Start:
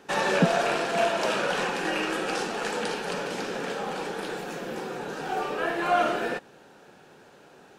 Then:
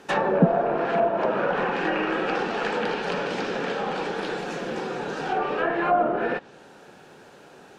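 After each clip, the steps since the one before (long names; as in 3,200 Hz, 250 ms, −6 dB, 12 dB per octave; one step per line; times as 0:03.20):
treble cut that deepens with the level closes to 850 Hz, closed at −21 dBFS
level +4 dB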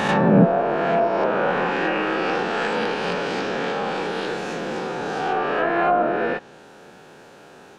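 peak hold with a rise ahead of every peak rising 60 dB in 1.37 s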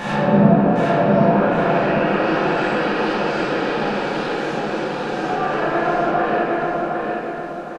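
repeating echo 758 ms, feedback 37%, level −3.5 dB
convolution reverb RT60 2.7 s, pre-delay 6 ms, DRR −8.5 dB
level −8.5 dB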